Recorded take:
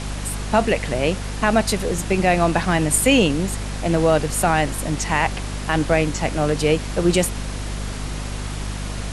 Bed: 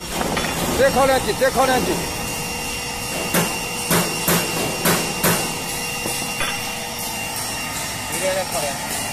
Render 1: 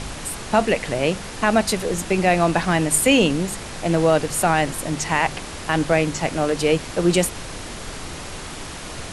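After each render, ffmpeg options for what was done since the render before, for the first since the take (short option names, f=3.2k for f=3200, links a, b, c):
-af "bandreject=f=50:t=h:w=4,bandreject=f=100:t=h:w=4,bandreject=f=150:t=h:w=4,bandreject=f=200:t=h:w=4,bandreject=f=250:t=h:w=4"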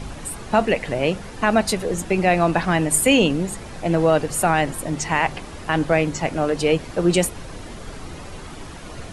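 -af "afftdn=nr=9:nf=-34"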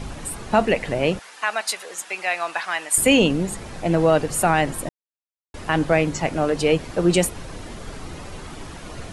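-filter_complex "[0:a]asettb=1/sr,asplit=3[a][b][c];[a]atrim=end=1.194[d];[b]atrim=start=1.19:end=2.98,asetpts=PTS-STARTPTS,afade=t=in:d=0.004:c=qsin,afade=t=out:st=1.786:d=0.004:c=qsin,highpass=1.1k[e];[c]atrim=start=2.976[f];[d][e]acrossfade=d=0.004:c1=hsin:c2=qsin[g];[g][f]acrossfade=d=0.004:c1=qsin:c2=hsin,asplit=3[h][i][j];[h]atrim=end=4.89,asetpts=PTS-STARTPTS,afade=t=out:st=4.886:d=0.004:c=hsin[k];[i]atrim=start=4.89:end=5.54,asetpts=PTS-STARTPTS,volume=0[l];[j]atrim=start=5.54,asetpts=PTS-STARTPTS,afade=t=in:d=0.004:c=hsin[m];[k][l][m]concat=n=3:v=0:a=1"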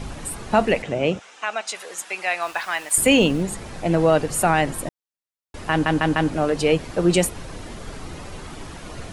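-filter_complex "[0:a]asettb=1/sr,asplit=3[a][b][c];[a]atrim=end=0.824[d];[b]atrim=start=0.82:end=1.75,asetpts=PTS-STARTPTS,afade=t=in:d=0.004:c=qsin,afade=t=out:st=0.926:d=0.004:c=qsin,highpass=100,equalizer=f=990:t=q:w=4:g=-5,equalizer=f=1.8k:t=q:w=4:g=-7,equalizer=f=4.5k:t=q:w=4:g=-9,lowpass=f=7.5k:w=0.5412,lowpass=f=7.5k:w=1.3066[e];[c]atrim=start=1.746[f];[d][e]acrossfade=d=0.004:c1=hsin:c2=qsin[g];[g][f]acrossfade=d=0.004:c1=qsin:c2=hsin,asettb=1/sr,asplit=3[h][i][j];[h]atrim=end=2.424[k];[i]atrim=start=2.42:end=3.43,asetpts=PTS-STARTPTS,afade=t=in:d=0.004:c=qsin,afade=t=out:st=1.006:d=0.004:c=qsin,aeval=exprs='val(0)*gte(abs(val(0)),0.0112)':c=same[l];[j]atrim=start=3.426[m];[k][l]acrossfade=d=0.004:c1=hsin:c2=qsin[n];[n][m]acrossfade=d=0.004:c1=qsin:c2=hsin,asplit=5[o][p][q][r][s];[o]atrim=end=5.862[t];[p]atrim=start=5.708:end=5.862[u];[q]atrim=start=5.708:end=5.862[v];[r]atrim=start=5.708:end=5.862[w];[s]atrim=start=6.308[x];[t][u]acrossfade=d=0.004:c1=hsin:c2=hsin[y];[y][v]acrossfade=d=0.004:c1=hsin:c2=hsin[z];[z][w]acrossfade=d=0.004:c1=hsin:c2=hsin[aa];[aa][x]acrossfade=d=0.004:c1=hsin:c2=hsin"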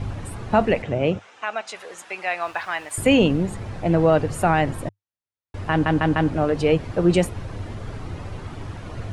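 -af "lowpass=f=2.3k:p=1,equalizer=f=100:t=o:w=0.5:g=14"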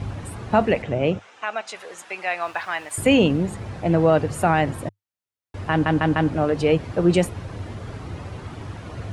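-af "highpass=53"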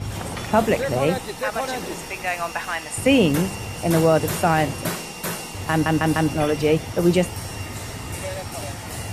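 -filter_complex "[1:a]volume=-10.5dB[a];[0:a][a]amix=inputs=2:normalize=0"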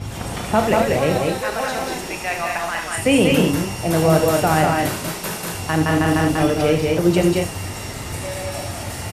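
-filter_complex "[0:a]asplit=2[a][b];[b]adelay=32,volume=-12dB[c];[a][c]amix=inputs=2:normalize=0,aecho=1:1:75.8|192.4|227.4:0.355|0.708|0.501"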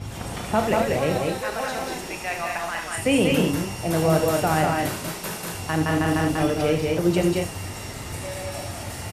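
-af "volume=-4.5dB"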